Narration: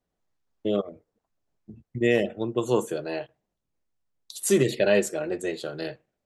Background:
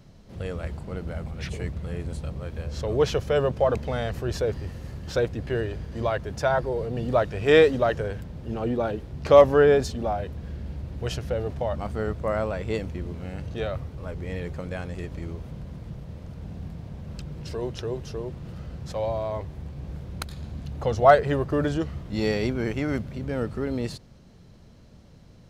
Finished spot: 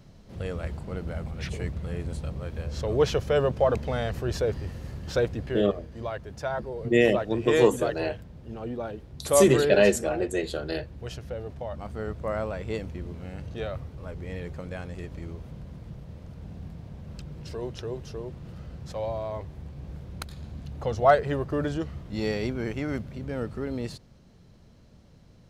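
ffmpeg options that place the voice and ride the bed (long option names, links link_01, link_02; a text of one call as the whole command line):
ffmpeg -i stem1.wav -i stem2.wav -filter_complex "[0:a]adelay=4900,volume=1.5dB[link_01];[1:a]volume=3.5dB,afade=type=out:start_time=5.36:duration=0.32:silence=0.446684,afade=type=in:start_time=11.67:duration=0.65:silence=0.630957[link_02];[link_01][link_02]amix=inputs=2:normalize=0" out.wav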